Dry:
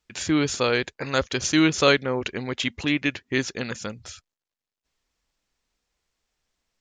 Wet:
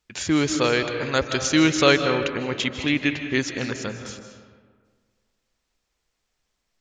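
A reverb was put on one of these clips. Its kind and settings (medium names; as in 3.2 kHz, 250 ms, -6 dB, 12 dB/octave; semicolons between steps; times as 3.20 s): algorithmic reverb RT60 1.7 s, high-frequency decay 0.5×, pre-delay 115 ms, DRR 7 dB; trim +1 dB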